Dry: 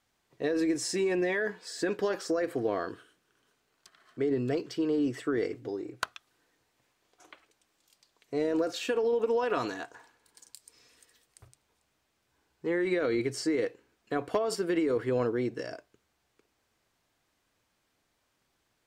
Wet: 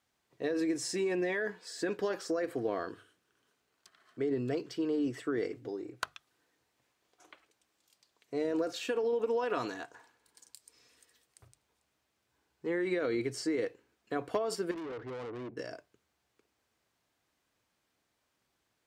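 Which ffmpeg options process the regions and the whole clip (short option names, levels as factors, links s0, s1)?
-filter_complex "[0:a]asettb=1/sr,asplit=3[s0][s1][s2];[s0]atrim=end=14.714[s3];[s1]atrim=start=14.71:end=15.57,asetpts=PTS-STARTPTS,afade=t=in:d=0.004:c=qsin,afade=t=out:st=0.856:d=0.004:c=qsin,adynamicsmooth=sensitivity=4.5:basefreq=1100,aeval=exprs='(tanh(56.2*val(0)+0.35)-tanh(0.35))/56.2':c=same[s4];[s2]atrim=start=15.566[s5];[s3][s4]acrossfade=d=0.004:c1=hsin:c2=qsin[s6];[s6][s5]acrossfade=d=0.004:c1=qsin:c2=hsin,highpass=46,bandreject=f=50:t=h:w=6,bandreject=f=100:t=h:w=6,bandreject=f=150:t=h:w=6,volume=0.668"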